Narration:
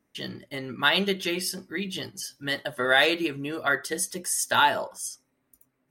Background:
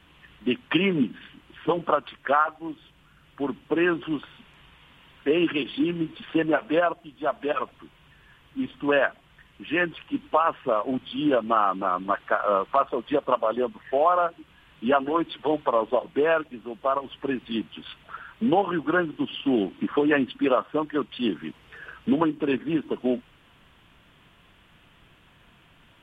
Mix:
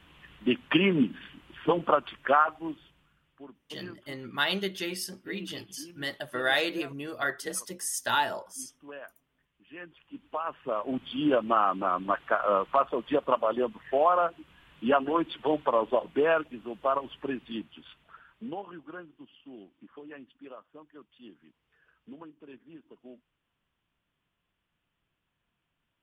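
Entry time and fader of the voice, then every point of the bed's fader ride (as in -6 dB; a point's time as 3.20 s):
3.55 s, -5.5 dB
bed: 2.69 s -1 dB
3.58 s -22.5 dB
9.64 s -22.5 dB
11.06 s -2.5 dB
16.98 s -2.5 dB
19.44 s -24.5 dB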